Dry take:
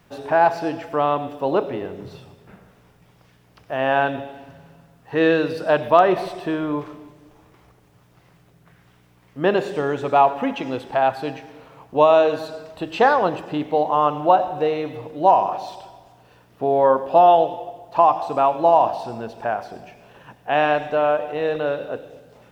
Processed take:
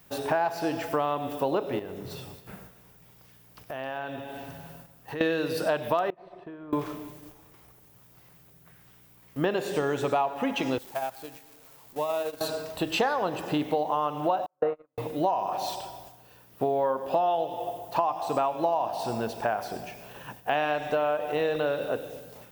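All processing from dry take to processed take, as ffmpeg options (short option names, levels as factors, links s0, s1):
-filter_complex "[0:a]asettb=1/sr,asplit=3[s0][s1][s2];[s0]atrim=end=1.794[s3];[s1]atrim=start=1.79:end=5.21,asetpts=PTS-STARTPTS,afade=t=in:d=0.004:c=qsin,afade=t=out:st=3.416:d=0.004:c=qsin,acompressor=threshold=0.0158:ratio=4:attack=3.2:release=140:knee=1:detection=peak,aecho=1:1:266:0.168,atrim=end_sample=150822[s4];[s2]atrim=start=5.206[s5];[s3][s4]acrossfade=d=0.004:c1=hsin:c2=qsin[s6];[s6][s5]acrossfade=d=0.004:c1=qsin:c2=hsin,asettb=1/sr,asplit=3[s7][s8][s9];[s7]atrim=end=6.104[s10];[s8]atrim=start=6.1:end=6.73,asetpts=PTS-STARTPTS,afade=t=in:d=0.004:c=qsin,afade=t=out:st=0.626:d=0.004:c=qsin,lowpass=1800,acompressor=threshold=0.0316:ratio=16:attack=3.2:release=140:knee=1:detection=peak,agate=range=0.0224:threshold=0.0447:ratio=3:release=100:detection=peak[s11];[s9]atrim=start=6.726[s12];[s10][s11]acrossfade=d=0.004:c1=hsin:c2=qsin[s13];[s13][s12]acrossfade=d=0.004:c1=qsin:c2=hsin,asettb=1/sr,asplit=3[s14][s15][s16];[s14]atrim=end=10.784[s17];[s15]atrim=start=10.78:end=12.41,asetpts=PTS-STARTPTS,afade=t=in:d=0.004:c=qsin,afade=t=out:st=1.626:d=0.004:c=qsin,aeval=exprs='val(0)+0.5*0.0447*sgn(val(0))':c=same,acompressor=threshold=0.0631:ratio=4:attack=3.2:release=140:knee=1:detection=peak,agate=range=0.0794:threshold=0.0562:ratio=16:release=100:detection=peak[s18];[s16]atrim=start=12.406[s19];[s17][s18]acrossfade=d=0.004:c1=hsin:c2=qsin[s20];[s20][s19]acrossfade=d=0.004:c1=qsin:c2=hsin,asettb=1/sr,asplit=3[s21][s22][s23];[s21]atrim=end=14.464[s24];[s22]atrim=start=14.46:end=14.98,asetpts=PTS-STARTPTS,afade=t=in:d=0.004:c=qsin,afade=t=out:st=0.516:d=0.004:c=qsin,agate=range=0.00224:threshold=0.0891:ratio=16:release=100:detection=peak,lowpass=f=1300:t=q:w=3.6,equalizer=f=560:w=5.2:g=9.5[s25];[s23]atrim=start=14.976[s26];[s24][s25]acrossfade=d=0.004:c1=hsin:c2=qsin[s27];[s27][s26]acrossfade=d=0.004:c1=qsin:c2=hsin,agate=range=0.501:threshold=0.00355:ratio=16:detection=peak,aemphasis=mode=production:type=50fm,acompressor=threshold=0.0562:ratio=6,volume=1.19"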